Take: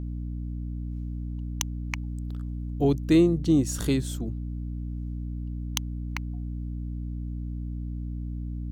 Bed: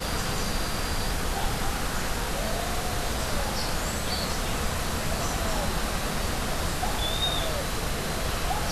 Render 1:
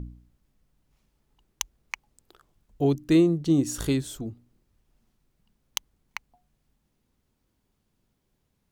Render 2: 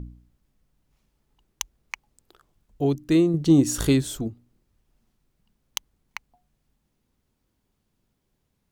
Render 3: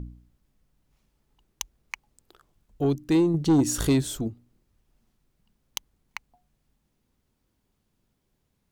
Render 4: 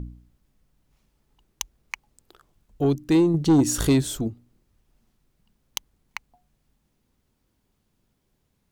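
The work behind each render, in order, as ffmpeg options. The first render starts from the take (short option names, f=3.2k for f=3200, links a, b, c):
-af "bandreject=f=60:t=h:w=4,bandreject=f=120:t=h:w=4,bandreject=f=180:t=h:w=4,bandreject=f=240:t=h:w=4,bandreject=f=300:t=h:w=4"
-filter_complex "[0:a]asettb=1/sr,asplit=3[a][b][c];[a]atrim=end=3.344[d];[b]atrim=start=3.34:end=4.28,asetpts=PTS-STARTPTS,afade=t=in:d=0.004:c=qsin,afade=t=out:st=0.936:d=0.004:c=qsin,acontrast=38[e];[c]atrim=start=4.276[f];[d][e]acrossfade=d=0.004:c1=hsin:c2=qsin[g];[g][f]acrossfade=d=0.004:c1=qsin:c2=hsin"
-af "asoftclip=type=tanh:threshold=-14dB"
-af "volume=2.5dB"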